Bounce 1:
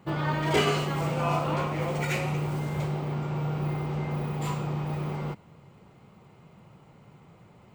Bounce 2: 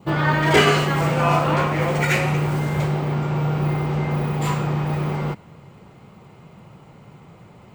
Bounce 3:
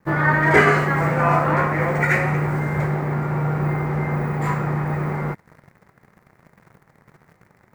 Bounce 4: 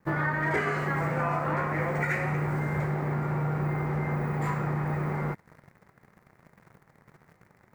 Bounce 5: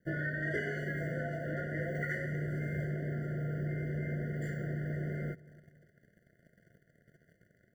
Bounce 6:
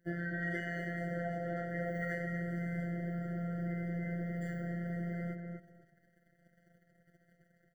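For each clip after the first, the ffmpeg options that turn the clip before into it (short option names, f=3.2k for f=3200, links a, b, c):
-af "adynamicequalizer=threshold=0.00447:dfrequency=1700:dqfactor=2.4:tfrequency=1700:tqfactor=2.4:attack=5:release=100:ratio=0.375:range=3:mode=boostabove:tftype=bell,volume=8dB"
-af "acrusher=bits=7:mix=0:aa=0.000001,aeval=exprs='sgn(val(0))*max(abs(val(0))-0.00631,0)':c=same,highshelf=f=2.4k:t=q:w=3:g=-7.5"
-af "acompressor=threshold=-20dB:ratio=6,volume=-4.5dB"
-filter_complex "[0:a]asplit=2[a][b];[b]adelay=267,lowpass=f=1.2k:p=1,volume=-21dB,asplit=2[c][d];[d]adelay=267,lowpass=f=1.2k:p=1,volume=0.46,asplit=2[e][f];[f]adelay=267,lowpass=f=1.2k:p=1,volume=0.46[g];[a][c][e][g]amix=inputs=4:normalize=0,afftfilt=real='re*eq(mod(floor(b*sr/1024/710),2),0)':imag='im*eq(mod(floor(b*sr/1024/710),2),0)':win_size=1024:overlap=0.75,volume=-6.5dB"
-filter_complex "[0:a]afftfilt=real='hypot(re,im)*cos(PI*b)':imag='0':win_size=1024:overlap=0.75,asplit=2[a][b];[b]adelay=248,lowpass=f=1.6k:p=1,volume=-4dB,asplit=2[c][d];[d]adelay=248,lowpass=f=1.6k:p=1,volume=0.22,asplit=2[e][f];[f]adelay=248,lowpass=f=1.6k:p=1,volume=0.22[g];[c][e][g]amix=inputs=3:normalize=0[h];[a][h]amix=inputs=2:normalize=0"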